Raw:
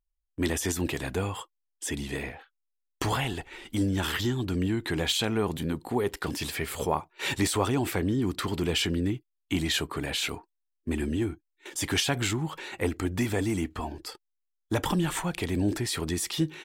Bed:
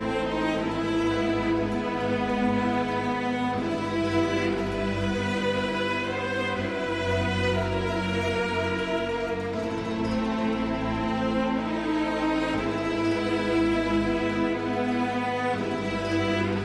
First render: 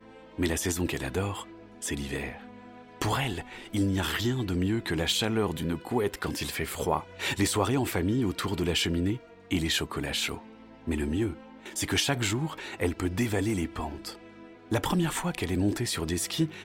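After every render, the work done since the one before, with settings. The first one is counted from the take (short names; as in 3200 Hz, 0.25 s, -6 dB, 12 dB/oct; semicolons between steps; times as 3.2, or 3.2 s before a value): add bed -23 dB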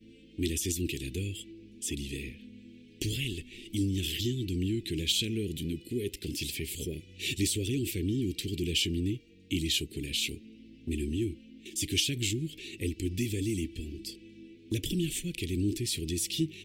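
elliptic band-stop 360–2600 Hz, stop band 70 dB; dynamic EQ 210 Hz, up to -4 dB, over -40 dBFS, Q 0.87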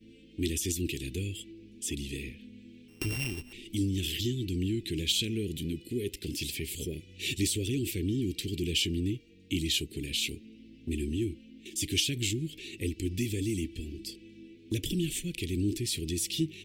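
2.88–3.53 sample sorter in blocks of 16 samples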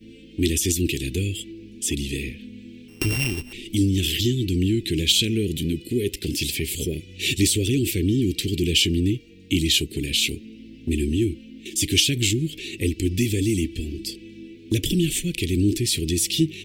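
gain +9.5 dB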